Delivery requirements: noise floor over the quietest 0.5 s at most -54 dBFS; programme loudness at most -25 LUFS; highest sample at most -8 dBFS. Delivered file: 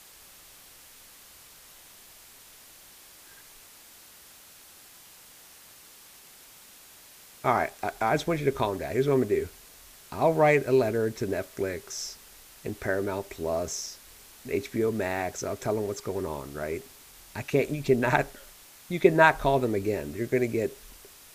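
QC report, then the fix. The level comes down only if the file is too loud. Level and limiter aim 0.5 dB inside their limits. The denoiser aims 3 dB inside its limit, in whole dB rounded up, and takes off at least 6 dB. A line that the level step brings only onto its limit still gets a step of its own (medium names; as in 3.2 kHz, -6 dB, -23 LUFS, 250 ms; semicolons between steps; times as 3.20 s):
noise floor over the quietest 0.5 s -52 dBFS: fail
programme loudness -27.5 LUFS: pass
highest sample -5.5 dBFS: fail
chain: noise reduction 6 dB, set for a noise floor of -52 dBFS; peak limiter -8.5 dBFS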